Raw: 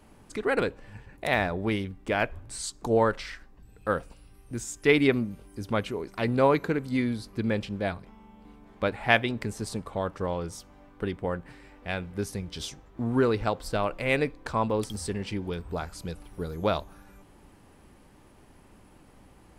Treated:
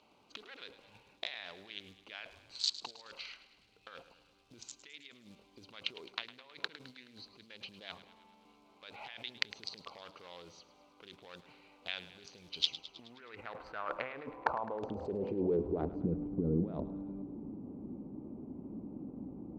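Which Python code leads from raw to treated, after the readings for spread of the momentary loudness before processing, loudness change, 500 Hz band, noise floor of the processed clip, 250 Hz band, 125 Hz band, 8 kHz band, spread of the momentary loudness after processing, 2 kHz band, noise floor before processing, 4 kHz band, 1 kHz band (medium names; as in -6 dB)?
14 LU, -11.0 dB, -13.5 dB, -66 dBFS, -11.0 dB, -12.0 dB, -12.5 dB, 20 LU, -15.0 dB, -56 dBFS, -1.5 dB, -13.0 dB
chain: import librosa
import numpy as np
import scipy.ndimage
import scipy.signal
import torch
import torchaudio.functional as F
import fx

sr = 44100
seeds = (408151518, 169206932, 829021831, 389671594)

y = fx.wiener(x, sr, points=25)
y = scipy.signal.sosfilt(scipy.signal.butter(8, 6800.0, 'lowpass', fs=sr, output='sos'), y)
y = fx.over_compress(y, sr, threshold_db=-37.0, ratio=-1.0)
y = fx.quant_companded(y, sr, bits=8)
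y = fx.filter_sweep_bandpass(y, sr, from_hz=3700.0, to_hz=250.0, start_s=12.55, end_s=16.17, q=2.4)
y = fx.echo_feedback(y, sr, ms=106, feedback_pct=60, wet_db=-15.0)
y = y * 10.0 ** (9.5 / 20.0)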